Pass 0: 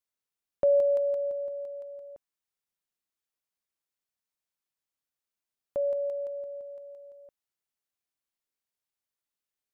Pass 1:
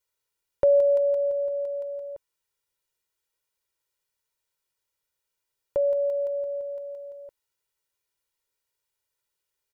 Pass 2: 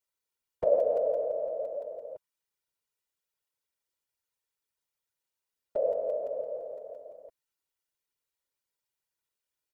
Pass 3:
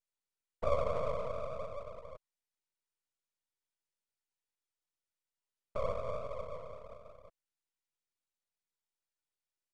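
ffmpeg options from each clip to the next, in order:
-filter_complex "[0:a]aecho=1:1:2.1:0.81,asplit=2[a][b];[b]acompressor=threshold=-32dB:ratio=6,volume=2dB[c];[a][c]amix=inputs=2:normalize=0,volume=-2dB"
-af "afftfilt=real='hypot(re,im)*cos(2*PI*random(0))':imag='hypot(re,im)*sin(2*PI*random(1))':win_size=512:overlap=0.75"
-af "aeval=exprs='max(val(0),0)':c=same,aresample=22050,aresample=44100,volume=-3dB"

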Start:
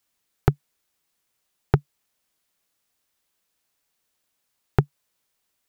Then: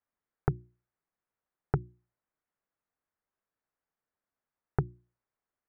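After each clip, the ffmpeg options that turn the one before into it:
-af "lowpass=f=1.8k:w=0.5412,lowpass=f=1.8k:w=1.3066,bandreject=f=60:t=h:w=6,bandreject=f=120:t=h:w=6,bandreject=f=180:t=h:w=6,bandreject=f=240:t=h:w=6,bandreject=f=300:t=h:w=6,bandreject=f=360:t=h:w=6,volume=-8.5dB"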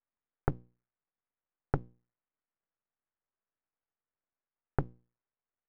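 -af "aeval=exprs='max(val(0),0)':c=same"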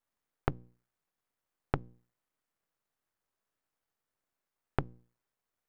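-af "acompressor=threshold=-33dB:ratio=6,volume=6.5dB"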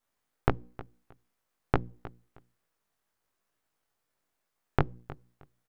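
-af "flanger=delay=17:depth=3.7:speed=2.2,aecho=1:1:313|626:0.133|0.0267,volume=9dB"

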